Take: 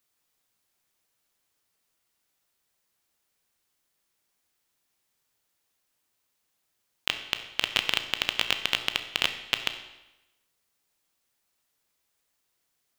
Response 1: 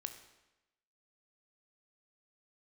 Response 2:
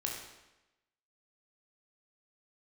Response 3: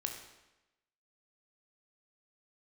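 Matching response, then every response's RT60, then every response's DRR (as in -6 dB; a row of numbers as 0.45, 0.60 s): 1; 1.0, 1.0, 1.0 s; 7.5, -1.0, 3.0 dB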